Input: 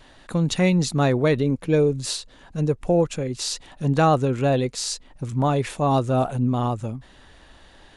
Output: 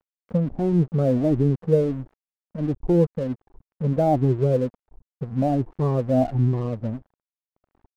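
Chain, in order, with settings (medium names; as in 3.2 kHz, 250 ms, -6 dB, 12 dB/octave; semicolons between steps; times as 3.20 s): drifting ripple filter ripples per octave 0.71, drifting +1.4 Hz, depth 17 dB; Gaussian low-pass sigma 12 samples; crossover distortion -40.5 dBFS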